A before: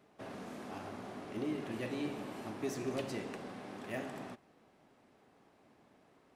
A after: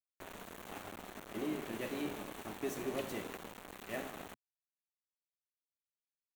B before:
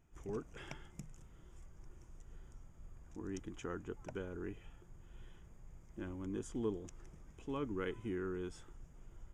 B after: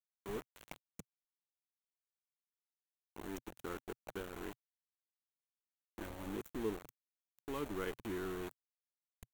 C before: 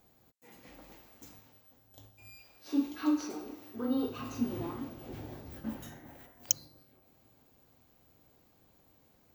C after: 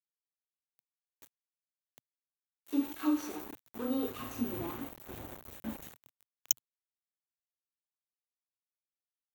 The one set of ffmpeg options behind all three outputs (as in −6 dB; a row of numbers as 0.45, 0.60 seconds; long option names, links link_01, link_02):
-af "aeval=exprs='val(0)*gte(abs(val(0)),0.00794)':channel_layout=same,equalizer=frequency=125:width_type=o:width=0.33:gain=-8,equalizer=frequency=250:width_type=o:width=0.33:gain=-3,equalizer=frequency=5000:width_type=o:width=0.33:gain=-9,equalizer=frequency=16000:width_type=o:width=0.33:gain=8"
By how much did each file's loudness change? −1.0, −0.5, −1.0 LU